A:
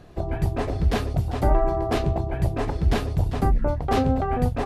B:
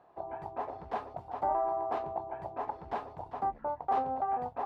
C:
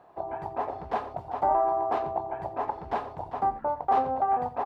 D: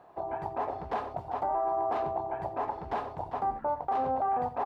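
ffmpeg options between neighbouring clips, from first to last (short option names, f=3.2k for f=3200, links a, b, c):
-af "bandpass=f=880:t=q:w=3.5:csg=0"
-af "aecho=1:1:86:0.178,volume=6dB"
-af "alimiter=limit=-22.5dB:level=0:latency=1:release=12"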